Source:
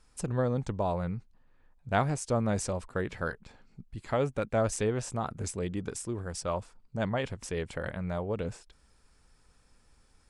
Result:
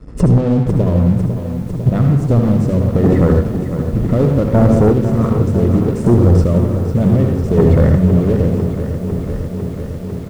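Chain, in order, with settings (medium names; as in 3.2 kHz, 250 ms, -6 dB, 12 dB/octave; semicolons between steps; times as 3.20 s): high-pass 41 Hz 12 dB/octave; rotary cabinet horn 7.5 Hz, later 1.2 Hz, at 3.22 s; boxcar filter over 56 samples; in parallel at -8 dB: wavefolder -30.5 dBFS; on the sum: delay 76 ms -16 dB; compression 8:1, threshold -39 dBFS, peak gain reduction 12 dB; reverberation RT60 0.70 s, pre-delay 57 ms, DRR 3.5 dB; square tremolo 0.66 Hz, depth 65%, duty 25%; waveshaping leveller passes 2; hum notches 50/100 Hz; loudness maximiser +33.5 dB; bit-crushed delay 500 ms, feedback 80%, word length 6-bit, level -10 dB; trim -4 dB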